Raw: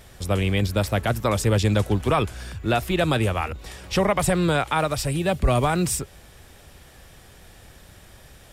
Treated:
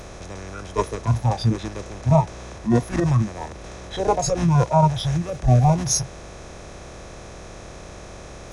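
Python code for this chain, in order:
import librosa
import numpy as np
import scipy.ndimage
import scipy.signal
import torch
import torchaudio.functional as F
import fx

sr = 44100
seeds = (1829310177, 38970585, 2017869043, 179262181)

y = fx.bin_compress(x, sr, power=0.2)
y = fx.noise_reduce_blind(y, sr, reduce_db=29)
y = fx.formant_shift(y, sr, semitones=-6)
y = y * librosa.db_to_amplitude(7.0)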